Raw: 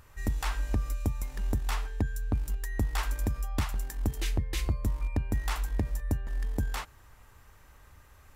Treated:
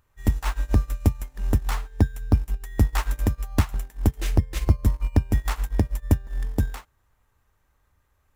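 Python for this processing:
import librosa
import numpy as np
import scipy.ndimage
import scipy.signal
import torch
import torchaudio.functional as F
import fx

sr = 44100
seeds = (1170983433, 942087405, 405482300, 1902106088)

p1 = fx.high_shelf(x, sr, hz=9600.0, db=4.5)
p2 = fx.sample_hold(p1, sr, seeds[0], rate_hz=5300.0, jitter_pct=0)
p3 = p1 + (p2 * 10.0 ** (-4.5 / 20.0))
p4 = fx.upward_expand(p3, sr, threshold_db=-35.0, expansion=2.5)
y = p4 * 10.0 ** (8.0 / 20.0)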